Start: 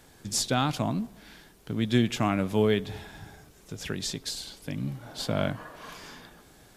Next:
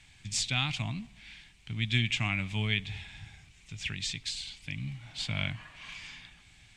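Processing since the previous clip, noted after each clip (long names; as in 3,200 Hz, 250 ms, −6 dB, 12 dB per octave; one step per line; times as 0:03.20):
drawn EQ curve 110 Hz 0 dB, 490 Hz −23 dB, 780 Hz −11 dB, 1,500 Hz −9 dB, 2,300 Hz +9 dB, 5,200 Hz −4 dB, 8,300 Hz −3 dB, 12,000 Hz −24 dB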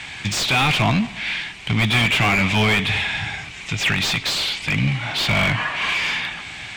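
mid-hump overdrive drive 32 dB, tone 1,400 Hz, clips at −12 dBFS
level +7 dB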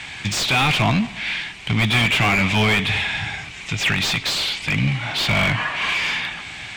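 no processing that can be heard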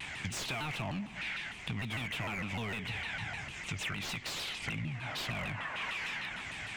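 parametric band 4,100 Hz −6.5 dB 0.86 octaves
downward compressor 6 to 1, threshold −29 dBFS, peak gain reduction 13.5 dB
pitch modulation by a square or saw wave saw down 6.6 Hz, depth 250 cents
level −6.5 dB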